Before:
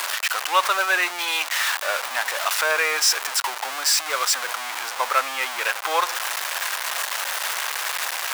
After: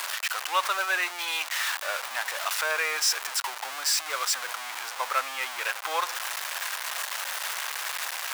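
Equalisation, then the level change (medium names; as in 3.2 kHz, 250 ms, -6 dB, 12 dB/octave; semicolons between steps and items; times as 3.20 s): bass shelf 460 Hz -5.5 dB; -5.5 dB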